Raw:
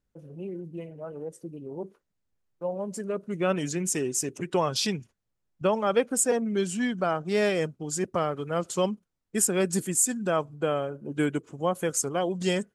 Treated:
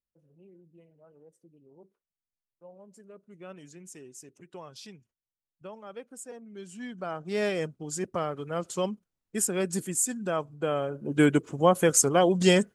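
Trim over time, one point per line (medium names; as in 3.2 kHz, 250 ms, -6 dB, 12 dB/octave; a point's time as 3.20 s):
6.47 s -19 dB
6.83 s -12 dB
7.43 s -3.5 dB
10.55 s -3.5 dB
11.29 s +6 dB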